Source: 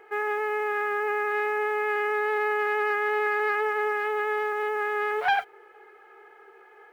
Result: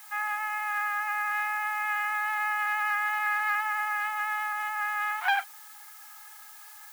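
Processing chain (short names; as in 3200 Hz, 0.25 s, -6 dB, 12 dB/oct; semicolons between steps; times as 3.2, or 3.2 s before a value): steep high-pass 810 Hz 48 dB/oct; added noise blue -49 dBFS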